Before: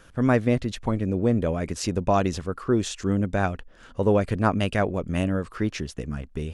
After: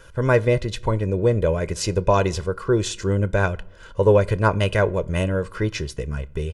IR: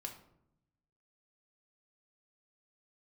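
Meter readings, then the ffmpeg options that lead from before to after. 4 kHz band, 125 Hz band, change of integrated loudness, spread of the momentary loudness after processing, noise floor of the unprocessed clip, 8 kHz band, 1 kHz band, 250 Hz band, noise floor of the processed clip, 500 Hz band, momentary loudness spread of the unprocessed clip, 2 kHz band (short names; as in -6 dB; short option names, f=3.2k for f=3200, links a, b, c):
+4.5 dB, +4.5 dB, +3.5 dB, 11 LU, -51 dBFS, +4.0 dB, +2.5 dB, -2.0 dB, -44 dBFS, +5.5 dB, 10 LU, +5.5 dB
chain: -filter_complex "[0:a]aecho=1:1:2:0.71,asplit=2[a][b];[1:a]atrim=start_sample=2205,adelay=28[c];[b][c]afir=irnorm=-1:irlink=0,volume=-15.5dB[d];[a][d]amix=inputs=2:normalize=0,volume=2.5dB"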